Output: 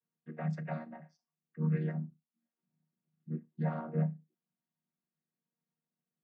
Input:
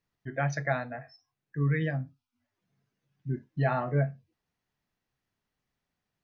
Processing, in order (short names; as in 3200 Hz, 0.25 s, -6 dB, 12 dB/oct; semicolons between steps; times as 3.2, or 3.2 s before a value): chord vocoder minor triad, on D#3; gain -4.5 dB